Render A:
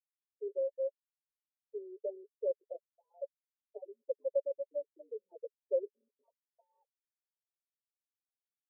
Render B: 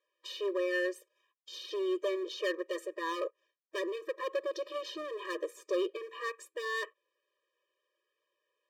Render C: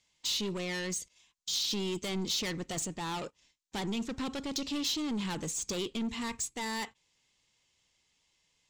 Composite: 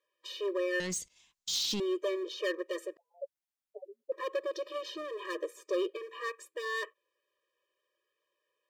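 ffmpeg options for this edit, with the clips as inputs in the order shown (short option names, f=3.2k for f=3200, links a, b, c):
-filter_complex "[1:a]asplit=3[a][b][c];[a]atrim=end=0.802[d];[2:a]atrim=start=0.798:end=1.802[e];[b]atrim=start=1.798:end=2.972[f];[0:a]atrim=start=2.968:end=4.122[g];[c]atrim=start=4.118[h];[d][e]acrossfade=d=0.004:c1=hsin:c2=hsin[i];[i][f]acrossfade=d=0.004:c1=hsin:c2=hsin[j];[j][g]acrossfade=d=0.004:c1=hsin:c2=hsin[k];[k][h]acrossfade=d=0.004:c1=hsin:c2=hsin"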